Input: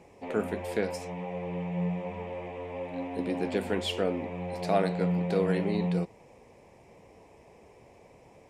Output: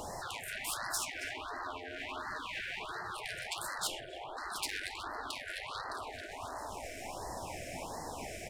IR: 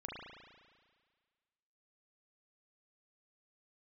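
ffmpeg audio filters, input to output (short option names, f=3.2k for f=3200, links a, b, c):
-filter_complex "[0:a]highshelf=f=4.9k:g=10,bandreject=f=50:t=h:w=6,bandreject=f=100:t=h:w=6,bandreject=f=150:t=h:w=6,bandreject=f=200:t=h:w=6,bandreject=f=250:t=h:w=6,bandreject=f=300:t=h:w=6,bandreject=f=350:t=h:w=6,bandreject=f=400:t=h:w=6,bandreject=f=450:t=h:w=6,bandreject=f=500:t=h:w=6,asplit=2[a][b];[b]adelay=269,lowpass=f=3.5k:p=1,volume=-11dB,asplit=2[c][d];[d]adelay=269,lowpass=f=3.5k:p=1,volume=0.47,asplit=2[e][f];[f]adelay=269,lowpass=f=3.5k:p=1,volume=0.47,asplit=2[g][h];[h]adelay=269,lowpass=f=3.5k:p=1,volume=0.47,asplit=2[i][j];[j]adelay=269,lowpass=f=3.5k:p=1,volume=0.47[k];[a][c][e][g][i][k]amix=inputs=6:normalize=0,asplit=2[l][m];[1:a]atrim=start_sample=2205[n];[m][n]afir=irnorm=-1:irlink=0,volume=-3dB[o];[l][o]amix=inputs=2:normalize=0,acompressor=threshold=-35dB:ratio=5,equalizer=f=210:t=o:w=1.9:g=11.5,asettb=1/sr,asplit=3[p][q][r];[p]atrim=end=3.874[s];[q]atrim=start=3.87:end=4.37,asetpts=PTS-STARTPTS,afade=t=in:d=0.004:c=qsin,afade=t=out:st=0.496:d=0.004:c=qsin,acrossover=split=250[t][u];[u]acompressor=threshold=-56dB:ratio=2[v];[t][v]amix=inputs=2:normalize=0[w];[r]atrim=start=4.366[x];[s][w]acrossfade=d=0.004:c1=hsin:c2=qsin[y];[y][x]acrossfade=d=0.004:c1=qsin:c2=hsin,aeval=exprs='(tanh(63.1*val(0)+0.2)-tanh(0.2))/63.1':c=same,afftfilt=real='re*lt(hypot(re,im),0.0126)':imag='im*lt(hypot(re,im),0.0126)':win_size=1024:overlap=0.75,afftfilt=real='re*(1-between(b*sr/1024,980*pow(2900/980,0.5+0.5*sin(2*PI*1.4*pts/sr))/1.41,980*pow(2900/980,0.5+0.5*sin(2*PI*1.4*pts/sr))*1.41))':imag='im*(1-between(b*sr/1024,980*pow(2900/980,0.5+0.5*sin(2*PI*1.4*pts/sr))/1.41,980*pow(2900/980,0.5+0.5*sin(2*PI*1.4*pts/sr))*1.41))':win_size=1024:overlap=0.75,volume=14dB"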